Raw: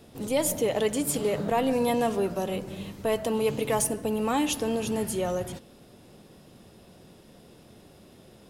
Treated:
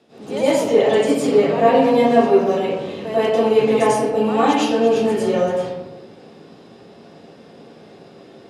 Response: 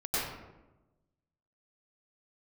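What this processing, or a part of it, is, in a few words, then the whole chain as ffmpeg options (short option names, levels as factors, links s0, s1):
supermarket ceiling speaker: -filter_complex "[0:a]highpass=220,lowpass=5400[s0];[1:a]atrim=start_sample=2205[s1];[s0][s1]afir=irnorm=-1:irlink=0,volume=1.26"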